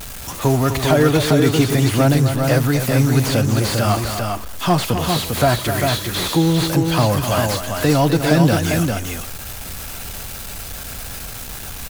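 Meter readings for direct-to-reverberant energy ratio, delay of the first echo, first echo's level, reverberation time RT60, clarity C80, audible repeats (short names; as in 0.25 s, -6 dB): none, 0.255 s, -9.0 dB, none, none, 2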